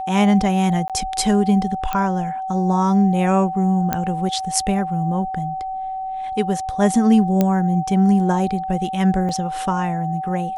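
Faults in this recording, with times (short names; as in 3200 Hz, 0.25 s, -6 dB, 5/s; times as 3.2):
tone 760 Hz -24 dBFS
0.88–0.9 gap 17 ms
1.93 pop -9 dBFS
3.93 pop -6 dBFS
7.41 pop -5 dBFS
9.29 gap 2.9 ms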